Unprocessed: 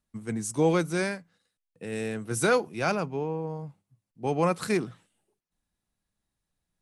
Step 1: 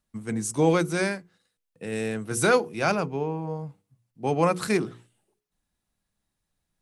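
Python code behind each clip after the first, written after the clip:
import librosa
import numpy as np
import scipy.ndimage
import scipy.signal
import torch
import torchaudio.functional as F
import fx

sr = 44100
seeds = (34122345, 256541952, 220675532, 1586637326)

y = fx.hum_notches(x, sr, base_hz=60, count=8)
y = y * 10.0 ** (3.0 / 20.0)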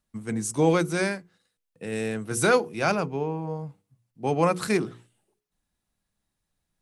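y = x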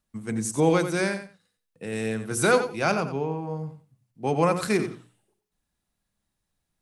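y = fx.echo_feedback(x, sr, ms=90, feedback_pct=18, wet_db=-10.5)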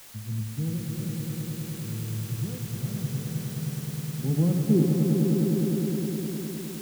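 y = fx.filter_sweep_lowpass(x, sr, from_hz=110.0, to_hz=780.0, start_s=3.5, end_s=6.17, q=2.0)
y = fx.quant_dither(y, sr, seeds[0], bits=8, dither='triangular')
y = fx.echo_swell(y, sr, ms=103, loudest=5, wet_db=-6.5)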